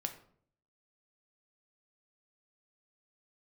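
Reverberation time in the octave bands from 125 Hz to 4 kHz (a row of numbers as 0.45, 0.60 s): 0.80, 0.75, 0.65, 0.50, 0.40, 0.35 s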